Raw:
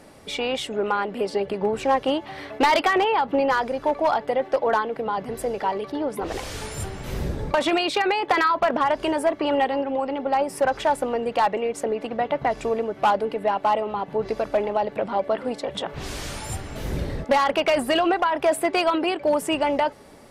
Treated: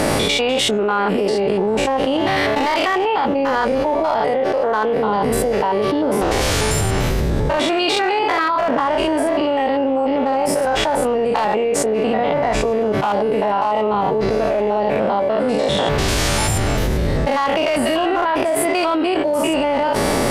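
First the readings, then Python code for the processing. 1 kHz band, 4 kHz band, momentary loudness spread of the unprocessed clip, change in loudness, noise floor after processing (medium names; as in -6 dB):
+4.0 dB, +7.5 dB, 10 LU, +6.0 dB, -19 dBFS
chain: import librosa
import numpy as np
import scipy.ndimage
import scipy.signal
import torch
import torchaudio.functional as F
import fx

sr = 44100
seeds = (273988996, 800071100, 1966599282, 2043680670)

y = fx.spec_steps(x, sr, hold_ms=100)
y = fx.doubler(y, sr, ms=19.0, db=-13)
y = fx.env_flatten(y, sr, amount_pct=100)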